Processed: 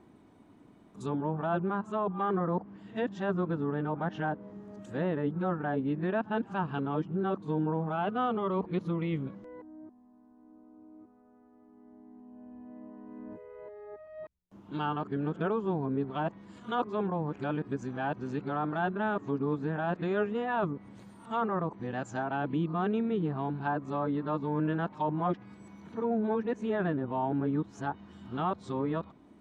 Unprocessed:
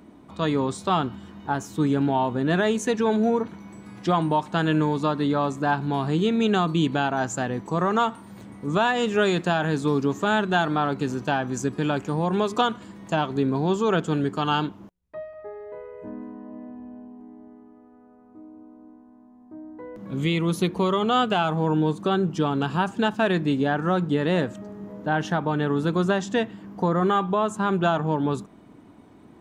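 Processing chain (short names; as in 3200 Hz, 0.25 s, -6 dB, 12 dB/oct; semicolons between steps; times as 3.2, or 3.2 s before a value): whole clip reversed; treble ducked by the level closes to 1600 Hz, closed at -19.5 dBFS; gain -8 dB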